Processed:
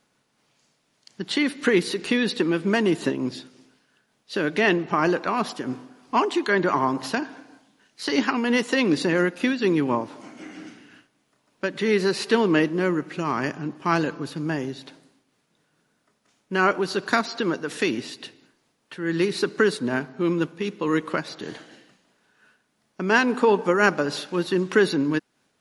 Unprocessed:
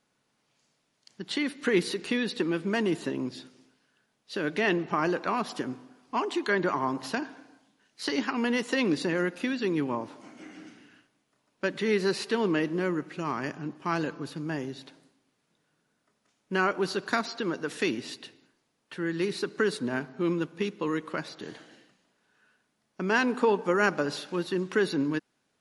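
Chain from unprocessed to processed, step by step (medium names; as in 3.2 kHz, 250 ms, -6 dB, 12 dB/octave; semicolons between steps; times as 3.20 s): random flutter of the level, depth 60%; trim +8.5 dB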